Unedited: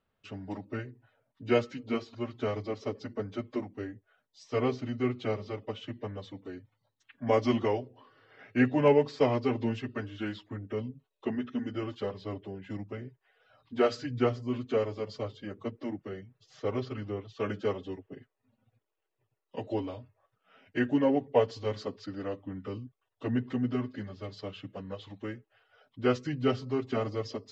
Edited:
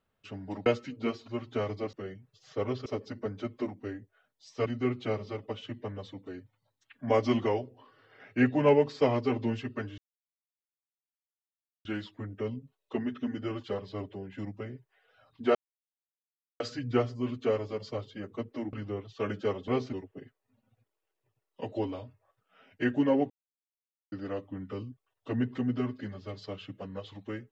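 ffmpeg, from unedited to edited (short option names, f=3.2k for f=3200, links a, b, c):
-filter_complex "[0:a]asplit=12[a][b][c][d][e][f][g][h][i][j][k][l];[a]atrim=end=0.662[m];[b]atrim=start=1.528:end=2.802[n];[c]atrim=start=15.998:end=16.932[o];[d]atrim=start=2.798:end=4.602[p];[e]atrim=start=4.848:end=10.17,asetpts=PTS-STARTPTS,afade=t=out:st=5.318:d=0.004:c=hsin,apad=pad_dur=1.87[q];[f]atrim=start=10.17:end=13.87,asetpts=PTS-STARTPTS,afade=t=in:d=0.004:c=hsin,afade=t=out:st=3.696:d=0.004:c=hsin,apad=pad_dur=1.05[r];[g]atrim=start=13.87:end=16.002,asetpts=PTS-STARTPTS,afade=t=in:d=0.004:c=hsin[s];[h]atrim=start=16.928:end=17.882[t];[i]atrim=start=4.598:end=4.852[u];[j]atrim=start=17.878:end=21.25,asetpts=PTS-STARTPTS,afade=t=out:st=3.368:d=0.004:c=hsin[v];[k]atrim=start=21.25:end=22.07,asetpts=PTS-STARTPTS,volume=0[w];[l]atrim=start=22.07,asetpts=PTS-STARTPTS,afade=t=in:d=0.004:c=hsin[x];[m][n]acrossfade=d=0.004:c1=hsin:c2=hsin[y];[y][o]acrossfade=d=0.004:c1=hsin:c2=hsin[z];[z][p]acrossfade=d=0.004:c1=hsin:c2=hsin[aa];[q][r][s]concat=n=3:v=0:a=1[ab];[aa][ab]acrossfade=d=0.004:c1=hsin:c2=hsin[ac];[ac][t]acrossfade=d=0.004:c1=hsin:c2=hsin[ad];[ad][u]acrossfade=d=0.004:c1=hsin:c2=hsin[ae];[v][w][x]concat=n=3:v=0:a=1[af];[ae][af]acrossfade=d=0.004:c1=hsin:c2=hsin"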